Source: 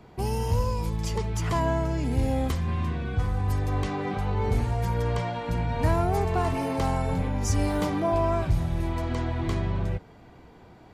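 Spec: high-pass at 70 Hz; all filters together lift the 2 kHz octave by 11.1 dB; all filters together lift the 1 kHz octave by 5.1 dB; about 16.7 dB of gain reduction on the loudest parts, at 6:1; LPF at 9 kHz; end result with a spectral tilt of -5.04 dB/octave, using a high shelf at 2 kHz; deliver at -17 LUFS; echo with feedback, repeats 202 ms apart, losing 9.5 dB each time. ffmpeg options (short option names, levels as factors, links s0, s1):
-af "highpass=70,lowpass=9000,equalizer=f=1000:t=o:g=3,highshelf=f=2000:g=6.5,equalizer=f=2000:t=o:g=9,acompressor=threshold=0.0141:ratio=6,aecho=1:1:202|404|606|808:0.335|0.111|0.0365|0.012,volume=12.6"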